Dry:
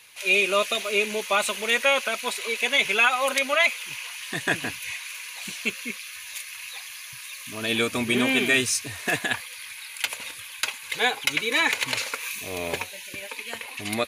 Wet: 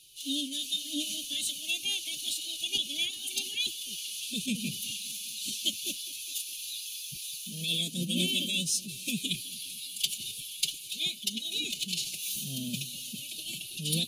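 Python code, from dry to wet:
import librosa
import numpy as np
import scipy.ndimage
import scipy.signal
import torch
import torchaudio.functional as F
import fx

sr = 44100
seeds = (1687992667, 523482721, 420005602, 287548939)

p1 = scipy.signal.sosfilt(scipy.signal.ellip(3, 1.0, 50, [260.0, 3100.0], 'bandstop', fs=sr, output='sos'), x)
p2 = fx.rider(p1, sr, range_db=3, speed_s=0.5)
p3 = fx.pitch_keep_formants(p2, sr, semitones=6.5)
y = p3 + fx.echo_bbd(p3, sr, ms=206, stages=1024, feedback_pct=59, wet_db=-20.0, dry=0)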